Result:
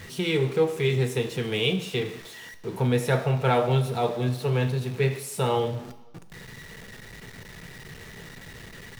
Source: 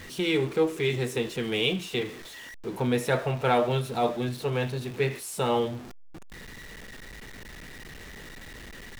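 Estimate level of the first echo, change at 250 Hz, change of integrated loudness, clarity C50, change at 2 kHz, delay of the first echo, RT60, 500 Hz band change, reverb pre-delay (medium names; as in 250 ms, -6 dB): no echo, +0.5 dB, +2.0 dB, 13.5 dB, +0.5 dB, no echo, 1.0 s, +1.5 dB, 3 ms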